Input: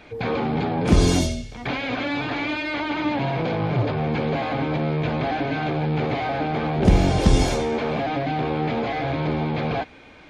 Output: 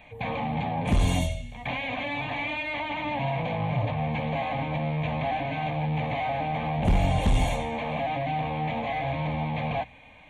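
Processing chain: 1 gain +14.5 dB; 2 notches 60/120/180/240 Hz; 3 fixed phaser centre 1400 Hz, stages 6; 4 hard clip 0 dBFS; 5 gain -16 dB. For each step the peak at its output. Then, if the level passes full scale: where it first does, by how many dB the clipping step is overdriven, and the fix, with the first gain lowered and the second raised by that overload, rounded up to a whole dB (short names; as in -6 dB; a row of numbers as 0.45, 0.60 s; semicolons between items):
+11.0, +10.0, +8.5, 0.0, -16.0 dBFS; step 1, 8.5 dB; step 1 +5.5 dB, step 5 -7 dB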